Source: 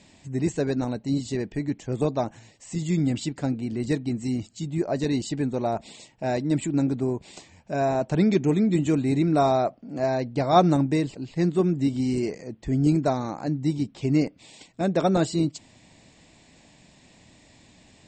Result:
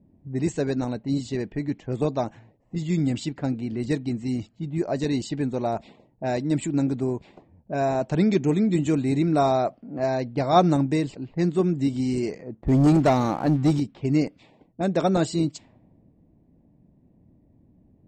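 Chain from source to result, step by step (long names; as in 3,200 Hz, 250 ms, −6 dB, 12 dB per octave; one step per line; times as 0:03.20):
low-pass that shuts in the quiet parts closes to 300 Hz, open at −22 dBFS
0:12.61–0:13.80: leveller curve on the samples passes 2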